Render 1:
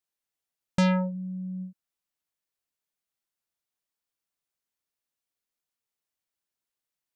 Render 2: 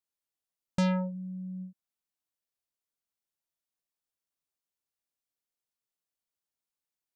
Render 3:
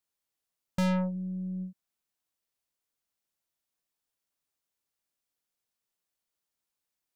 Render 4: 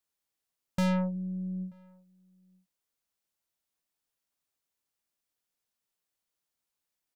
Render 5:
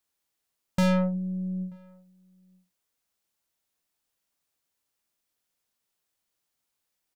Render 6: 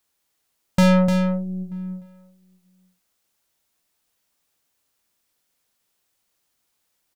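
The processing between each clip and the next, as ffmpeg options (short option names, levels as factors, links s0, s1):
-af "equalizer=f=2000:t=o:w=1.4:g=-3,volume=0.631"
-af "aeval=exprs='(tanh(28.2*val(0)+0.2)-tanh(0.2))/28.2':c=same,volume=1.68"
-filter_complex "[0:a]asplit=2[s0][s1];[s1]adelay=932.9,volume=0.0355,highshelf=f=4000:g=-21[s2];[s0][s2]amix=inputs=2:normalize=0"
-filter_complex "[0:a]asplit=2[s0][s1];[s1]adelay=45,volume=0.316[s2];[s0][s2]amix=inputs=2:normalize=0,volume=1.68"
-af "aecho=1:1:300:0.422,volume=2.37"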